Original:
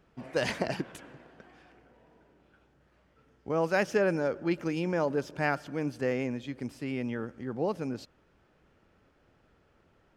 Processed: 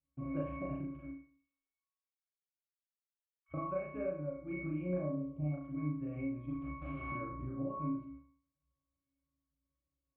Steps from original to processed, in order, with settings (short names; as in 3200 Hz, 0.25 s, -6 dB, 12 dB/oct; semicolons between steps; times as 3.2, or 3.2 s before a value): gate -57 dBFS, range -32 dB; 1.08–3.54 spectral gate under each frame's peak -30 dB weak; 4.98–5.54 Butterworth band-stop 1700 Hz, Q 0.82; 6.5–7.12 wrapped overs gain 36.5 dB; steep low-pass 3200 Hz; low shelf 110 Hz +7 dB; octave resonator C#, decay 0.5 s; compressor 6:1, threshold -56 dBFS, peak gain reduction 18.5 dB; reverb RT60 0.45 s, pre-delay 33 ms, DRR -2 dB; gain +16.5 dB